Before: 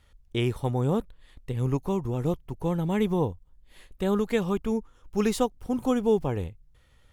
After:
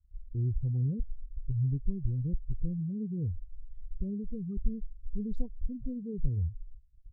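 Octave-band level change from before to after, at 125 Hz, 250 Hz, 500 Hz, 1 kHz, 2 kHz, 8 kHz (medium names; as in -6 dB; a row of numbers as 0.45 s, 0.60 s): -1.5 dB, -9.0 dB, -21.0 dB, under -40 dB, under -40 dB, under -35 dB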